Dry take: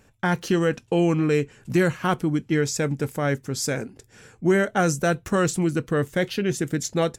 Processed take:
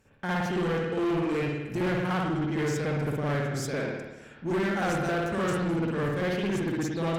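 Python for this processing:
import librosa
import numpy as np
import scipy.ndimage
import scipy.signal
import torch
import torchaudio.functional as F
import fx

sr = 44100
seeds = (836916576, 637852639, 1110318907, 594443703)

y = fx.rev_spring(x, sr, rt60_s=1.0, pass_ms=(55,), chirp_ms=65, drr_db=-8.5)
y = 10.0 ** (-15.0 / 20.0) * np.tanh(y / 10.0 ** (-15.0 / 20.0))
y = fx.cheby_harmonics(y, sr, harmonics=(8,), levels_db=(-30,), full_scale_db=-15.0)
y = y * librosa.db_to_amplitude(-9.0)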